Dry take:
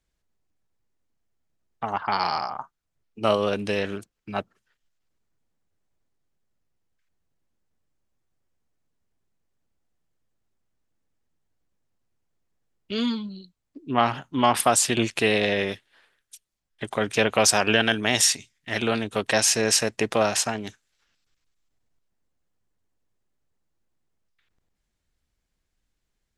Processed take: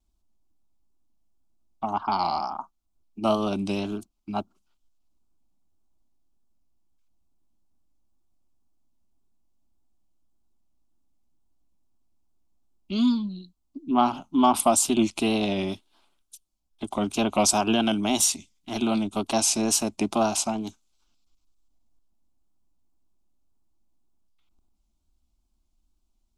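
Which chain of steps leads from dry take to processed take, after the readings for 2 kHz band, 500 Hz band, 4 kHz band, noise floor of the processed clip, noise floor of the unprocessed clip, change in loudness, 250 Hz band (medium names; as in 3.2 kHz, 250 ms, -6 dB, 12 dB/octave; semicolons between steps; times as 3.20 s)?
-10.5 dB, -3.5 dB, -4.5 dB, -73 dBFS, -79 dBFS, -1.5 dB, +4.0 dB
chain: bass shelf 320 Hz +8.5 dB; static phaser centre 480 Hz, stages 6; wow and flutter 66 cents; dynamic bell 4.9 kHz, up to -4 dB, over -39 dBFS, Q 2.3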